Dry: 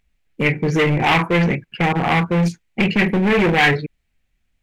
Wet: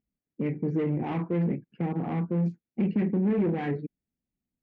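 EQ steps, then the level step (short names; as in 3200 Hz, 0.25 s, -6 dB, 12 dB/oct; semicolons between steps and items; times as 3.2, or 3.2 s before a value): band-pass 250 Hz, Q 1.5; -5.0 dB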